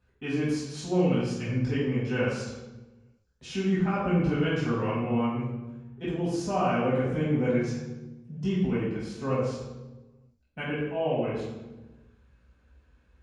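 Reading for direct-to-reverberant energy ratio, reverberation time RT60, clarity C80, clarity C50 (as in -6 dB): -9.5 dB, 1.1 s, 3.0 dB, -0.5 dB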